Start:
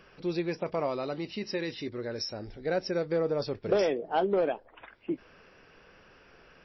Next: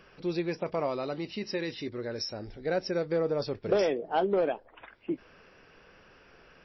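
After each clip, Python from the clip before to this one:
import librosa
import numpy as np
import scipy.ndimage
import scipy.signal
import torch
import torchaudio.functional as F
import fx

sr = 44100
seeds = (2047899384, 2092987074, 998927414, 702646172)

y = x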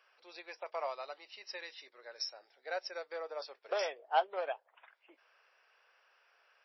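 y = scipy.signal.sosfilt(scipy.signal.butter(4, 650.0, 'highpass', fs=sr, output='sos'), x)
y = fx.upward_expand(y, sr, threshold_db=-47.0, expansion=1.5)
y = F.gain(torch.from_numpy(y), 1.0).numpy()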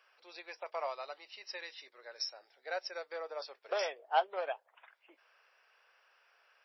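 y = fx.low_shelf(x, sr, hz=390.0, db=-3.5)
y = F.gain(torch.from_numpy(y), 1.0).numpy()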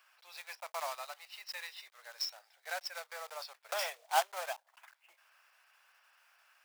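y = fx.block_float(x, sr, bits=3)
y = scipy.signal.sosfilt(scipy.signal.butter(4, 700.0, 'highpass', fs=sr, output='sos'), y)
y = F.gain(torch.from_numpy(y), 1.0).numpy()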